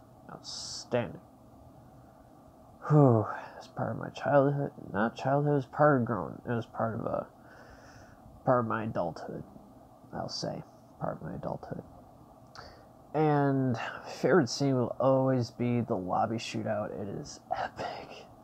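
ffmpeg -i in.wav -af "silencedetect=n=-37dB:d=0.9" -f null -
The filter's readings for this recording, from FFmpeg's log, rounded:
silence_start: 1.15
silence_end: 2.84 | silence_duration: 1.69
silence_start: 7.23
silence_end: 8.47 | silence_duration: 1.24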